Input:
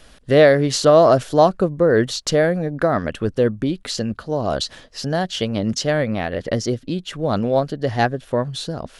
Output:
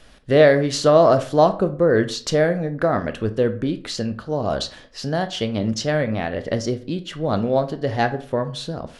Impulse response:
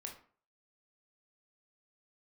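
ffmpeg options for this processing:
-filter_complex "[0:a]highshelf=f=9200:g=-8,asplit=2[s0][s1];[1:a]atrim=start_sample=2205[s2];[s1][s2]afir=irnorm=-1:irlink=0,volume=1.26[s3];[s0][s3]amix=inputs=2:normalize=0,volume=0.501"

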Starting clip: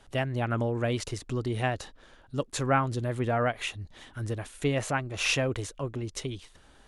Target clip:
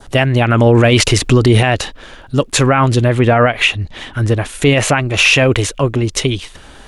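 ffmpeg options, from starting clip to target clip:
-filter_complex "[0:a]adynamicequalizer=threshold=0.00447:dfrequency=2600:dqfactor=1.6:tfrequency=2600:tqfactor=1.6:attack=5:release=100:ratio=0.375:range=3.5:mode=boostabove:tftype=bell,asettb=1/sr,asplit=3[s0][s1][s2];[s0]atrim=end=0.664[s3];[s1]atrim=start=0.66:end=1.63,asetpts=PTS-STARTPTS,afade=t=in:d=0.004:c=qsin,afade=t=out:st=0.966:d=0.004:c=qsin,acontrast=90[s4];[s2]atrim=start=1.626[s5];[s3][s4]acrossfade=d=0.004:c1=hsin:c2=qsin[s6];[s6][s5]acrossfade=d=0.004:c1=qsin:c2=hsin,asettb=1/sr,asplit=3[s7][s8][s9];[s7]atrim=end=3.024[s10];[s8]atrim=start=3.02:end=4.49,asetpts=PTS-STARTPTS,afade=t=in:d=0.004:c=qsin,afade=t=out:st=1.466:d=0.004:c=qsin,highshelf=f=6500:g=-8[s11];[s9]atrim=start=4.486[s12];[s10][s11]acrossfade=d=0.004:c1=hsin:c2=qsin[s13];[s13][s12]acrossfade=d=0.004:c1=qsin:c2=hsin,alimiter=level_in=9.44:limit=0.891:release=50:level=0:latency=1,volume=0.891"

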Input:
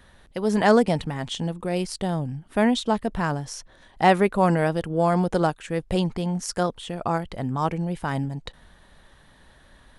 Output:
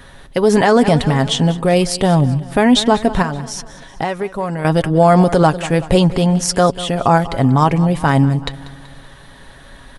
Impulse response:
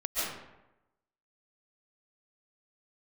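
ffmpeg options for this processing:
-filter_complex "[0:a]aecho=1:1:7.3:0.38,asettb=1/sr,asplit=3[s0][s1][s2];[s0]atrim=end=3.224[s3];[s1]atrim=start=3.22:end=4.65,asetpts=PTS-STARTPTS,afade=t=in:d=0.004:c=qsin,afade=t=out:st=1.426:d=0.004:c=qsin,acompressor=threshold=0.02:ratio=4[s4];[s2]atrim=start=4.646[s5];[s3][s4]acrossfade=d=0.004:c1=hsin:c2=qsin[s6];[s6][s5]acrossfade=d=0.004:c1=qsin:c2=hsin,aecho=1:1:190|380|570|760:0.126|0.0655|0.034|0.0177,alimiter=level_in=4.73:limit=0.891:release=50:level=0:latency=1,volume=0.891"

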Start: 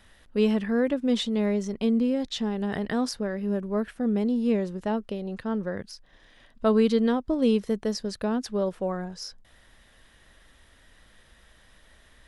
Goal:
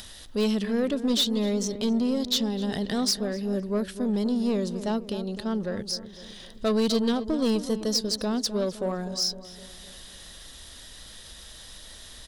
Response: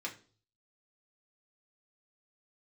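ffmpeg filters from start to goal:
-filter_complex "[0:a]highshelf=f=3000:t=q:w=1.5:g=10.5,aeval=exprs='0.299*(cos(1*acos(clip(val(0)/0.299,-1,1)))-cos(1*PI/2))+0.0376*(cos(5*acos(clip(val(0)/0.299,-1,1)))-cos(5*PI/2))':c=same,asplit=2[s0][s1];[s1]asoftclip=type=tanh:threshold=0.0422,volume=0.355[s2];[s0][s2]amix=inputs=2:normalize=0,acompressor=mode=upward:threshold=0.0251:ratio=2.5,asplit=2[s3][s4];[s4]adelay=256,lowpass=f=1700:p=1,volume=0.266,asplit=2[s5][s6];[s6]adelay=256,lowpass=f=1700:p=1,volume=0.53,asplit=2[s7][s8];[s8]adelay=256,lowpass=f=1700:p=1,volume=0.53,asplit=2[s9][s10];[s10]adelay=256,lowpass=f=1700:p=1,volume=0.53,asplit=2[s11][s12];[s12]adelay=256,lowpass=f=1700:p=1,volume=0.53,asplit=2[s13][s14];[s14]adelay=256,lowpass=f=1700:p=1,volume=0.53[s15];[s3][s5][s7][s9][s11][s13][s15]amix=inputs=7:normalize=0,volume=0.562"

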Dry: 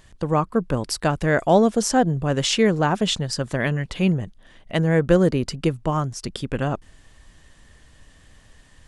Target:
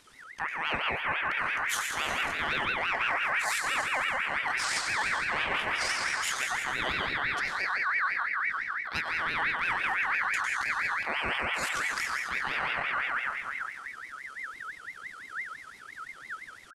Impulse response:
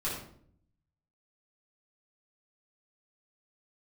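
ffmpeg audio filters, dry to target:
-filter_complex "[0:a]bandreject=f=50:t=h:w=6,bandreject=f=100:t=h:w=6,bandreject=f=150:t=h:w=6,bandreject=f=200:t=h:w=6,bandreject=f=250:t=h:w=6,bandreject=f=300:t=h:w=6,bandreject=f=350:t=h:w=6,bandreject=f=400:t=h:w=6,asplit=2[s0][s1];[1:a]atrim=start_sample=2205,asetrate=22491,aresample=44100,adelay=56[s2];[s1][s2]afir=irnorm=-1:irlink=0,volume=0.335[s3];[s0][s3]amix=inputs=2:normalize=0,aeval=exprs='clip(val(0),-1,0.316)':c=same,atempo=0.53,equalizer=f=7500:t=o:w=1.4:g=2.5,acrossover=split=160[s4][s5];[s4]adelay=70[s6];[s6][s5]amix=inputs=2:normalize=0,areverse,acompressor=threshold=0.0562:ratio=5,areverse,aeval=exprs='val(0)*sin(2*PI*1700*n/s+1700*0.25/5.9*sin(2*PI*5.9*n/s))':c=same"

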